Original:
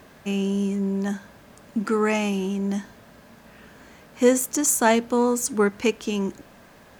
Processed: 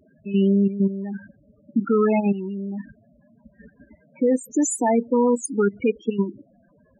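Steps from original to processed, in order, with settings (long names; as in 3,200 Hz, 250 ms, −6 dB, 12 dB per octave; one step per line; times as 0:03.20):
0:02.59–0:04.38: variable-slope delta modulation 16 kbit/s
output level in coarse steps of 12 dB
spectral peaks only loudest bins 8
level +7 dB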